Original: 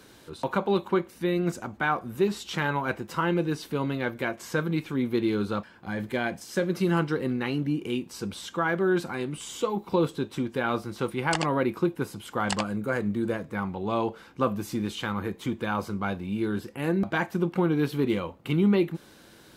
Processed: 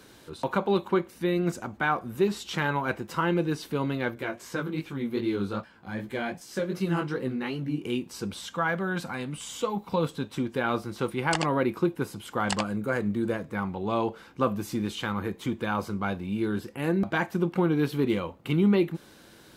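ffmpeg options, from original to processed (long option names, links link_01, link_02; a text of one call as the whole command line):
ffmpeg -i in.wav -filter_complex "[0:a]asettb=1/sr,asplit=3[link_01][link_02][link_03];[link_01]atrim=end=4.154[link_04];[link_02]atrim=start=4.15:end=7.84,asetpts=PTS-STARTPTS,afade=type=in:duration=0.004:curve=qsin,afade=type=out:start_time=3.686:duration=0.004:curve=qsin,flanger=delay=15:depth=6.3:speed=2.6[link_05];[link_03]atrim=start=7.836[link_06];[link_04][link_05]acrossfade=duration=0.004:curve1=hsin:curve2=qsin[link_07];[link_07][link_06]acrossfade=duration=0.004:curve1=qsin:curve2=hsin,asettb=1/sr,asplit=3[link_08][link_09][link_10];[link_08]atrim=end=8.404[link_11];[link_09]atrim=start=8.4:end=10.37,asetpts=PTS-STARTPTS,afade=type=in:duration=0.004:curve=qsin,afade=type=out:start_time=1.966:duration=0.004:curve=qsin,equalizer=frequency=360:width_type=o:width=0.26:gain=-13.5[link_12];[link_10]atrim=start=10.366[link_13];[link_11][link_12]acrossfade=duration=0.004:curve1=hsin:curve2=qsin[link_14];[link_14][link_13]acrossfade=duration=0.004:curve1=qsin:curve2=hsin" out.wav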